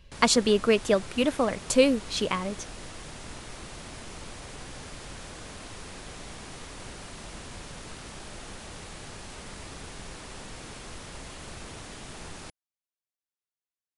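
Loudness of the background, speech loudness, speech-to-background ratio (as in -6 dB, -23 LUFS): -42.0 LUFS, -24.5 LUFS, 17.5 dB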